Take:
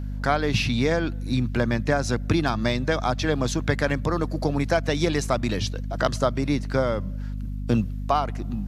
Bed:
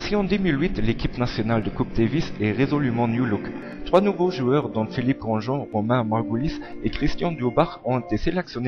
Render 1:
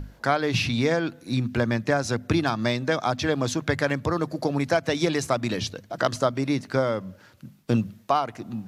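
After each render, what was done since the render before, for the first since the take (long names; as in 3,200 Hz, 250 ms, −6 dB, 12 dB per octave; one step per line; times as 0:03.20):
mains-hum notches 50/100/150/200/250 Hz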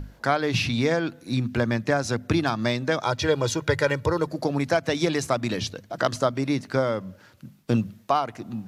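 0:03.02–0:04.27: comb filter 2.1 ms, depth 69%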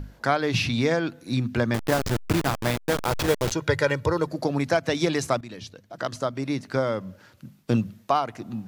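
0:01.74–0:03.52: hold until the input has moved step −20.5 dBFS
0:05.41–0:07.07: fade in, from −14.5 dB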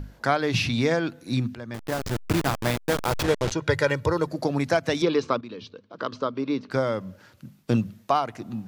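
0:01.55–0:02.39: fade in, from −18.5 dB
0:03.23–0:03.68: high-frequency loss of the air 50 metres
0:05.02–0:06.71: loudspeaker in its box 130–4,500 Hz, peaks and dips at 140 Hz −6 dB, 250 Hz +3 dB, 450 Hz +7 dB, 710 Hz −9 dB, 1,100 Hz +6 dB, 1,900 Hz −8 dB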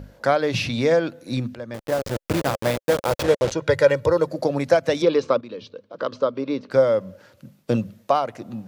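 high-pass filter 67 Hz 6 dB per octave
parametric band 540 Hz +11 dB 0.42 octaves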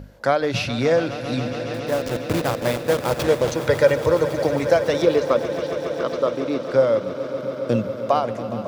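echo that builds up and dies away 138 ms, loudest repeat 5, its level −15 dB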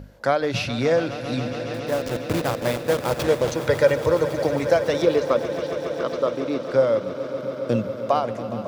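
level −1.5 dB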